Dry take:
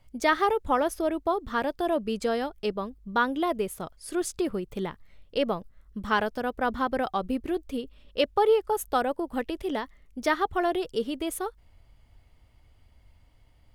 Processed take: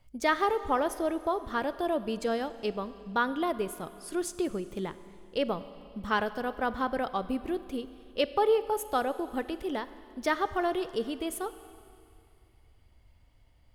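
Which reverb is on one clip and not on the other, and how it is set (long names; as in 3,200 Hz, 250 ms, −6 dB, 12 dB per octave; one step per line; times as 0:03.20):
four-comb reverb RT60 2.4 s, combs from 31 ms, DRR 13.5 dB
level −3 dB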